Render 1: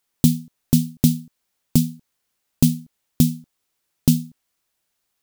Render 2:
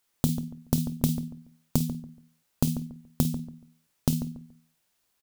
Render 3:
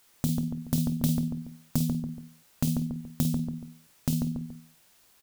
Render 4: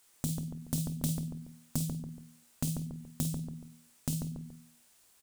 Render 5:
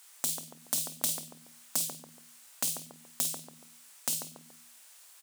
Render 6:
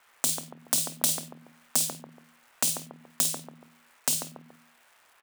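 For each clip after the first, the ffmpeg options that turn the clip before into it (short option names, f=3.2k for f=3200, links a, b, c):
-filter_complex "[0:a]asplit=2[a][b];[b]aecho=0:1:27|50:0.422|0.335[c];[a][c]amix=inputs=2:normalize=0,acompressor=threshold=-22dB:ratio=5,asplit=2[d][e];[e]adelay=142,lowpass=f=1.2k:p=1,volume=-10.5dB,asplit=2[f][g];[g]adelay=142,lowpass=f=1.2k:p=1,volume=0.27,asplit=2[h][i];[i]adelay=142,lowpass=f=1.2k:p=1,volume=0.27[j];[f][h][j]amix=inputs=3:normalize=0[k];[d][k]amix=inputs=2:normalize=0"
-filter_complex "[0:a]asplit=2[a][b];[b]acompressor=threshold=-34dB:ratio=6,volume=2dB[c];[a][c]amix=inputs=2:normalize=0,alimiter=limit=-10.5dB:level=0:latency=1:release=468,asoftclip=type=tanh:threshold=-20.5dB,volume=5.5dB"
-af "equalizer=f=8.5k:t=o:w=0.79:g=7,bandreject=f=60:t=h:w=6,bandreject=f=120:t=h:w=6,bandreject=f=180:t=h:w=6,bandreject=f=240:t=h:w=6,volume=-5.5dB"
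-af "highpass=760,volume=9dB"
-filter_complex "[0:a]equalizer=f=13k:w=2.3:g=-5,acrossover=split=180|1600|2400[a][b][c][d];[d]aeval=exprs='sgn(val(0))*max(abs(val(0))-0.00251,0)':c=same[e];[a][b][c][e]amix=inputs=4:normalize=0,volume=6.5dB"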